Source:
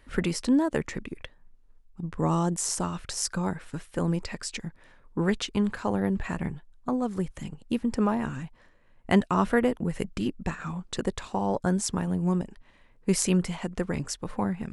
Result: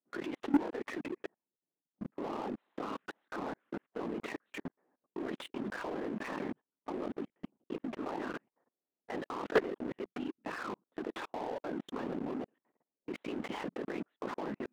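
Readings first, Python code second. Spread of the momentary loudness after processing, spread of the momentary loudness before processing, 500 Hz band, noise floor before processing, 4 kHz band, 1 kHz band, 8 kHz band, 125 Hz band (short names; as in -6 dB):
13 LU, 13 LU, -7.5 dB, -58 dBFS, -13.0 dB, -8.5 dB, -28.0 dB, -21.5 dB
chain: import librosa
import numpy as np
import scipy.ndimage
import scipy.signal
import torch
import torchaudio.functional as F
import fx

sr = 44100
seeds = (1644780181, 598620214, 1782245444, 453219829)

y = fx.env_lowpass(x, sr, base_hz=500.0, full_db=-24.0)
y = fx.lpc_vocoder(y, sr, seeds[0], excitation='whisper', order=10)
y = scipy.signal.sosfilt(scipy.signal.butter(4, 260.0, 'highpass', fs=sr, output='sos'), y)
y = fx.level_steps(y, sr, step_db=22)
y = fx.high_shelf(y, sr, hz=2300.0, db=-11.0)
y = fx.leveller(y, sr, passes=3)
y = y * librosa.db_to_amplitude(-4.0)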